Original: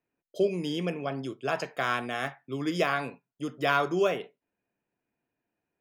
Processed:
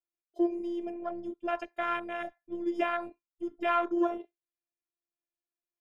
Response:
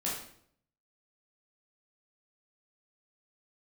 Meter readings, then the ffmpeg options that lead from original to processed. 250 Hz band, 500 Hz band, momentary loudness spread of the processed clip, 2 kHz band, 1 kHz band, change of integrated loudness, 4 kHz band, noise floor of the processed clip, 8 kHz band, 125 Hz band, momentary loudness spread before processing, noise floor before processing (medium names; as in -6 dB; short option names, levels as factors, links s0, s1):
0.0 dB, -4.0 dB, 12 LU, -7.0 dB, -1.5 dB, -3.0 dB, -11.5 dB, under -85 dBFS, under -15 dB, under -25 dB, 12 LU, under -85 dBFS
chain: -af "afwtdn=0.0251,afftfilt=real='hypot(re,im)*cos(PI*b)':imag='0':win_size=512:overlap=0.75"